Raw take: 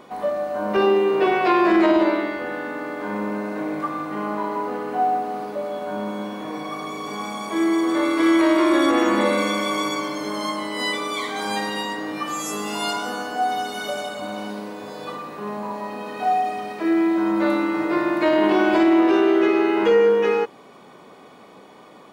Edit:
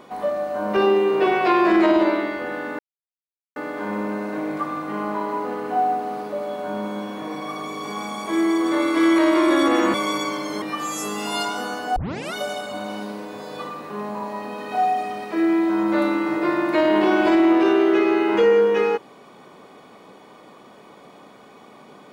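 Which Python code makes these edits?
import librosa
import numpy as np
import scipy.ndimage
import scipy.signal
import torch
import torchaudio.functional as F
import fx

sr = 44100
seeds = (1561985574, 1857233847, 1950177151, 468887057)

y = fx.edit(x, sr, fx.insert_silence(at_s=2.79, length_s=0.77),
    fx.cut(start_s=9.17, length_s=0.48),
    fx.cut(start_s=10.33, length_s=1.77),
    fx.tape_start(start_s=13.44, length_s=0.38), tone=tone)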